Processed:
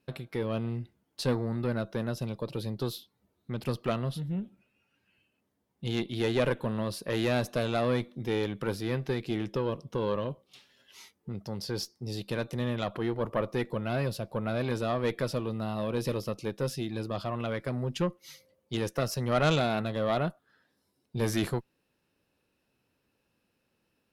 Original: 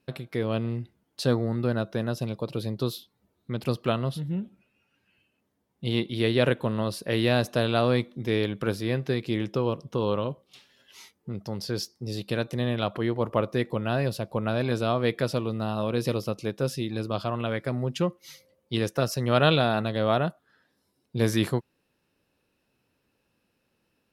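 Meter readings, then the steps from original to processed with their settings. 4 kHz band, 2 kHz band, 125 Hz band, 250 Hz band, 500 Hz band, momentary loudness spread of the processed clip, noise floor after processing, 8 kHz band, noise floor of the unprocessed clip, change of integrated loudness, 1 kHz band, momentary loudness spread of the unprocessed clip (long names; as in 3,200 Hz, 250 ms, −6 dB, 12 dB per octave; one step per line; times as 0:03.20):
−5.5 dB, −4.5 dB, −4.5 dB, −4.0 dB, −4.0 dB, 8 LU, −77 dBFS, −2.0 dB, −75 dBFS, −4.0 dB, −4.0 dB, 9 LU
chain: tube saturation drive 15 dB, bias 0.55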